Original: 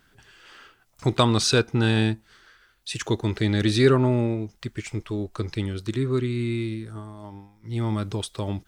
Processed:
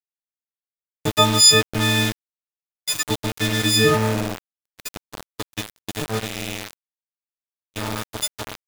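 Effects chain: partials quantised in pitch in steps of 6 st; small samples zeroed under -20.5 dBFS; gate -39 dBFS, range -33 dB

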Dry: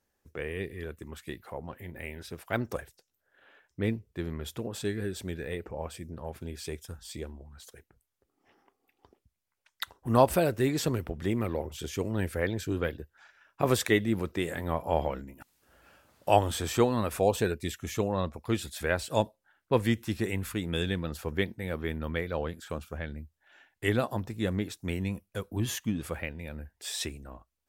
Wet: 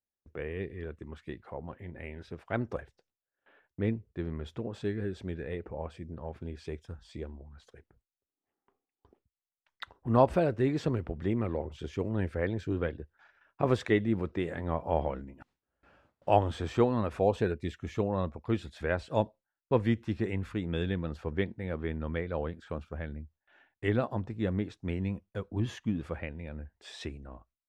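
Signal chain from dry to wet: gate with hold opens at -51 dBFS; tape spacing loss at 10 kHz 25 dB

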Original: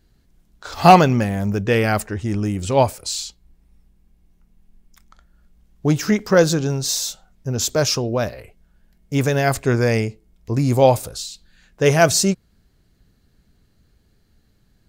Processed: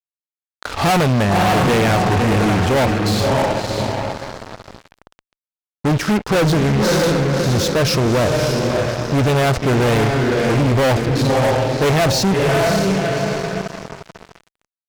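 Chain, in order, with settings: distance through air 210 m; echo that smears into a reverb 595 ms, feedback 42%, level -6 dB; fuzz box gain 28 dB, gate -36 dBFS

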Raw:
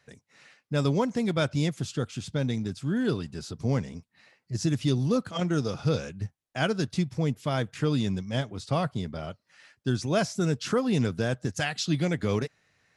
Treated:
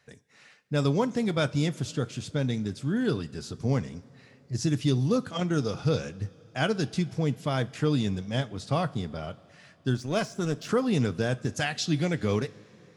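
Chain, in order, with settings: 9.94–10.69 s: power-law waveshaper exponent 1.4; two-slope reverb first 0.26 s, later 3.6 s, from -18 dB, DRR 14 dB

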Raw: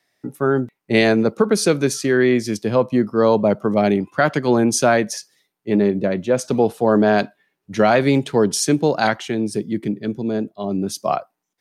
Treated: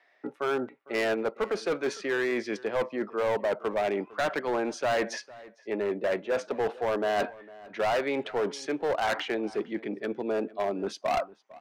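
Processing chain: reverse; compression 12:1, threshold -24 dBFS, peak gain reduction 15 dB; reverse; Butterworth band-pass 1.1 kHz, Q 0.53; overload inside the chain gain 30 dB; echo from a far wall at 78 m, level -20 dB; trim +7 dB

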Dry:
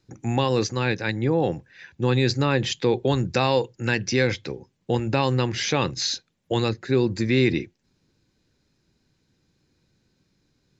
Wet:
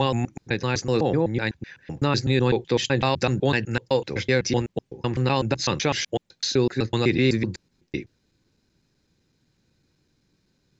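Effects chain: slices played last to first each 126 ms, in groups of 4

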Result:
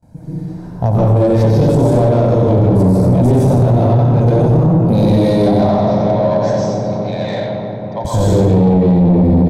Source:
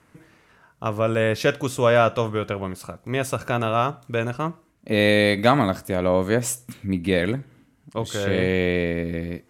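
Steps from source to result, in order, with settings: recorder AGC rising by 8.6 dB/s; 5.44–8.05 s: Chebyshev band-pass 600–6000 Hz, order 5; feedback delay 91 ms, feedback 39%, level -5 dB; gate with hold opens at -47 dBFS; filtered feedback delay 317 ms, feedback 77%, low-pass 3.2 kHz, level -12.5 dB; reverberation RT60 0.70 s, pre-delay 127 ms, DRR -5.5 dB; compression, threshold -12 dBFS, peak gain reduction 10 dB; tilt shelf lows +7 dB, about 740 Hz; saturation -12.5 dBFS, distortion -10 dB; high-order bell 1.9 kHz -13 dB; trim +5.5 dB

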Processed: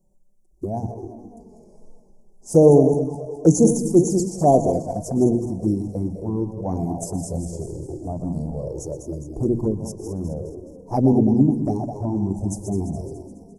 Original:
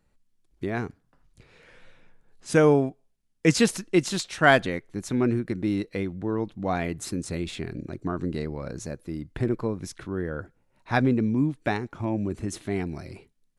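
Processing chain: backward echo that repeats 105 ms, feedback 71%, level -8 dB; inverse Chebyshev band-stop 1.3–3.9 kHz, stop band 40 dB; hum notches 60/120/180/240/300 Hz; touch-sensitive flanger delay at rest 5.4 ms, full sweep at -19.5 dBFS; delay 121 ms -16.5 dB; trim +7 dB

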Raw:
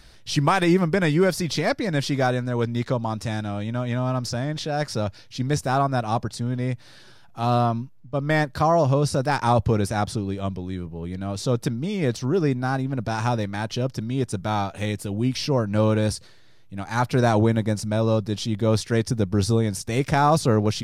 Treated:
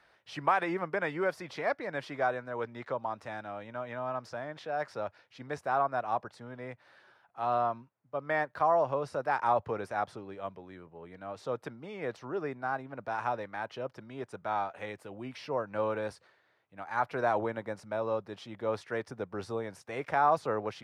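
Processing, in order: high-pass 93 Hz; three-band isolator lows -18 dB, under 470 Hz, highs -20 dB, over 2.3 kHz; trim -4.5 dB

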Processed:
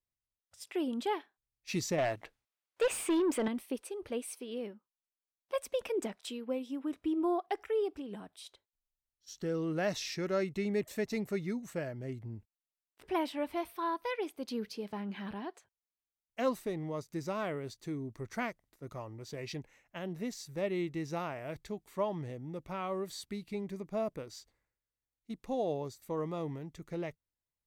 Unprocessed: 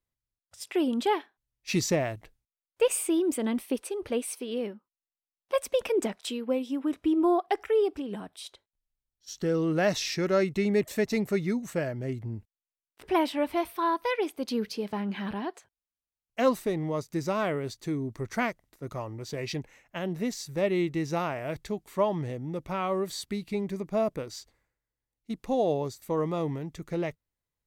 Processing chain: 1.98–3.48 s: overdrive pedal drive 21 dB, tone 2.5 kHz, clips at -13.5 dBFS; trim -7.5 dB

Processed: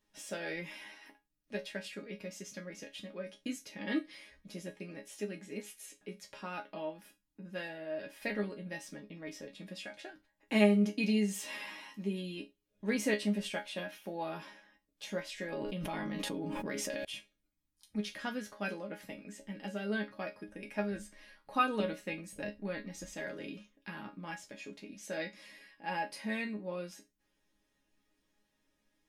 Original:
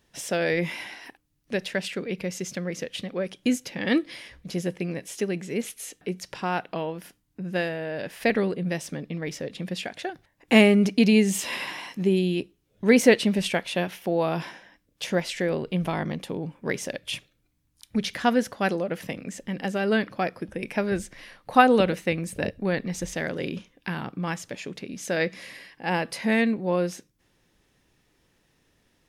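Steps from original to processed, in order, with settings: chord resonator G#3 sus4, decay 0.2 s; 15.52–17.05 s: level flattener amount 100%; trim +3 dB

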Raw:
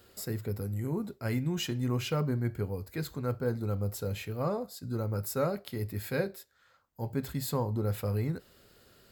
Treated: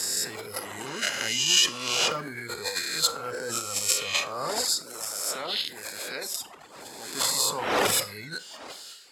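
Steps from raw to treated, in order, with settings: reverse spectral sustain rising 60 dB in 1.67 s; wind noise 580 Hz -35 dBFS; reverb removal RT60 1.1 s; 4.62–7.15 s: harmonic-percussive split harmonic -16 dB; transient shaper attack -4 dB, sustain +11 dB; frequency weighting ITU-R 468; Schroeder reverb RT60 0.33 s, combs from 30 ms, DRR 15.5 dB; trim +2.5 dB

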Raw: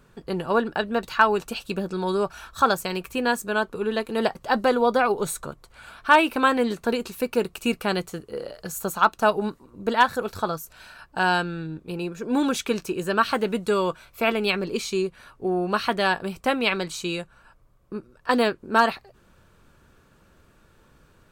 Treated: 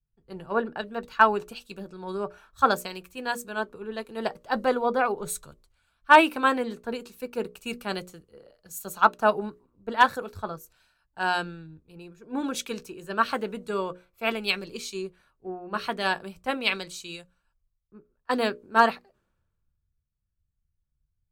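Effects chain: hum notches 60/120/180/240/300/360/420/480/540/600 Hz; three bands expanded up and down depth 100%; trim -6 dB

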